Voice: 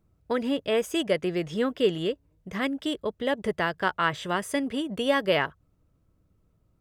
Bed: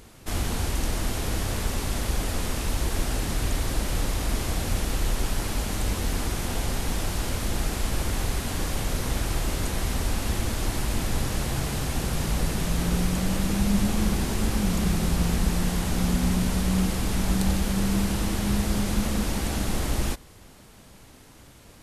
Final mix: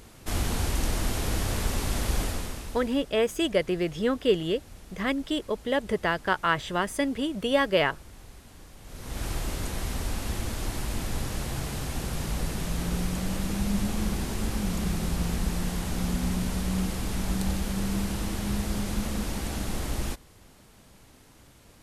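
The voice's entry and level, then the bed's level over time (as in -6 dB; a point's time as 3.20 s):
2.45 s, +0.5 dB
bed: 2.22 s -0.5 dB
3.10 s -21 dB
8.79 s -21 dB
9.24 s -4.5 dB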